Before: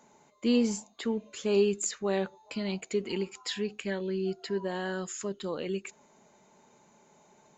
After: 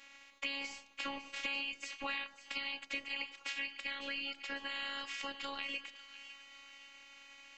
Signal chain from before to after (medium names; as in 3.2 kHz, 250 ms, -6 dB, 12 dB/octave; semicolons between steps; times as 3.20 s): spectral peaks clipped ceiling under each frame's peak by 28 dB; low-pass 3.8 kHz 6 dB/octave; peaking EQ 2.4 kHz +14.5 dB 1.2 oct; gate with hold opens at -49 dBFS; compression 5:1, threshold -37 dBFS, peak gain reduction 21.5 dB; robot voice 278 Hz; on a send: two-band feedback delay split 1.4 kHz, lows 98 ms, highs 551 ms, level -13.5 dB